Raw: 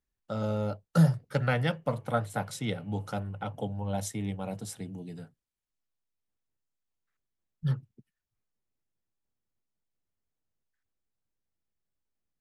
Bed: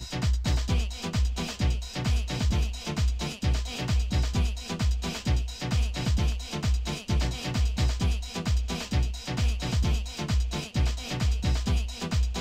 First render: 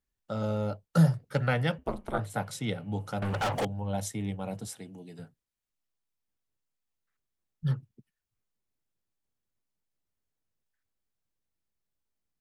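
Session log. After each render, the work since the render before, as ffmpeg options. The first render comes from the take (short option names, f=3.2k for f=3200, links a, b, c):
-filter_complex "[0:a]asettb=1/sr,asplit=3[a][b][c];[a]atrim=end=1.784[d];[b]atrim=start=1.78:end=2.19,asetpts=PTS-STARTPTS,afade=t=in:d=0.004:c=qsin,afade=t=out:st=0.406:d=0.004:c=qsin,aeval=exprs='val(0)*sin(2*PI*95*n/s)':c=same[e];[c]atrim=start=2.186[f];[d][e]acrossfade=d=0.004:c1=hsin:c2=qsin[g];[g][f]acrossfade=d=0.004:c1=qsin:c2=hsin,asettb=1/sr,asplit=3[h][i][j];[h]atrim=end=3.224[k];[i]atrim=start=3.22:end=3.65,asetpts=PTS-STARTPTS,afade=t=in:d=0.004:c=qsin,afade=t=out:st=0.426:d=0.004:c=qsin,asplit=2[l][m];[m]highpass=f=720:p=1,volume=35dB,asoftclip=type=tanh:threshold=-22dB[n];[l][n]amix=inputs=2:normalize=0,lowpass=f=6.7k:p=1,volume=-6dB[o];[j]atrim=start=3.646[p];[k][o]acrossfade=d=0.004:c1=hsin:c2=qsin[q];[q][p]acrossfade=d=0.004:c1=qsin:c2=hsin,asettb=1/sr,asplit=3[r][s][t];[r]atrim=end=4.674[u];[s]atrim=start=4.67:end=5.19,asetpts=PTS-STARTPTS,afade=t=in:d=0.004:c=qsin,afade=t=out:st=0.516:d=0.004:c=qsin,highpass=f=330:p=1[v];[t]atrim=start=5.186[w];[u][v]acrossfade=d=0.004:c1=hsin:c2=qsin[x];[x][w]acrossfade=d=0.004:c1=qsin:c2=hsin"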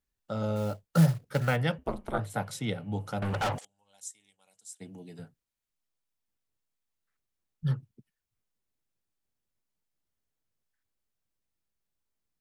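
-filter_complex "[0:a]asplit=3[a][b][c];[a]afade=t=out:st=0.55:d=0.02[d];[b]acrusher=bits=5:mode=log:mix=0:aa=0.000001,afade=t=in:st=0.55:d=0.02,afade=t=out:st=1.55:d=0.02[e];[c]afade=t=in:st=1.55:d=0.02[f];[d][e][f]amix=inputs=3:normalize=0,asplit=3[g][h][i];[g]afade=t=out:st=3.57:d=0.02[j];[h]bandpass=f=7.6k:t=q:w=2.8,afade=t=in:st=3.57:d=0.02,afade=t=out:st=4.8:d=0.02[k];[i]afade=t=in:st=4.8:d=0.02[l];[j][k][l]amix=inputs=3:normalize=0"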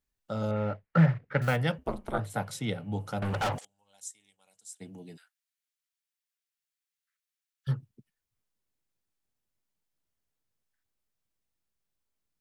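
-filter_complex "[0:a]asettb=1/sr,asplit=3[a][b][c];[a]atrim=end=0.514[d];[b]atrim=start=0.51:end=1.42,asetpts=PTS-STARTPTS,afade=t=in:d=0.004:c=qsin,afade=t=out:st=0.906:d=0.004:c=qsin,lowpass=f=2k:t=q:w=2.6[e];[c]atrim=start=1.416[f];[d][e]acrossfade=d=0.004:c1=hsin:c2=qsin[g];[g][f]acrossfade=d=0.004:c1=qsin:c2=hsin,asplit=3[h][i][j];[h]afade=t=out:st=5.16:d=0.02[k];[i]highpass=f=1.4k:w=0.5412,highpass=f=1.4k:w=1.3066,afade=t=in:st=5.16:d=0.02,afade=t=out:st=7.67:d=0.02[l];[j]afade=t=in:st=7.67:d=0.02[m];[k][l][m]amix=inputs=3:normalize=0"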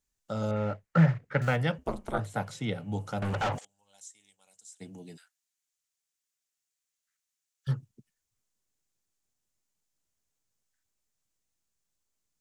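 -filter_complex "[0:a]acrossover=split=3800[a][b];[b]acompressor=threshold=-56dB:ratio=4:attack=1:release=60[c];[a][c]amix=inputs=2:normalize=0,equalizer=f=6.9k:w=1.5:g=9.5"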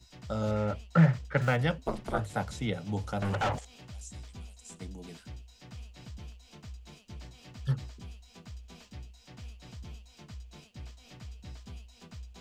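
-filter_complex "[1:a]volume=-19.5dB[a];[0:a][a]amix=inputs=2:normalize=0"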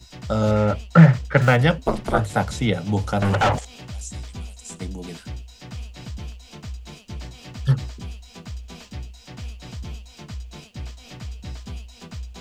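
-af "volume=11dB,alimiter=limit=-1dB:level=0:latency=1"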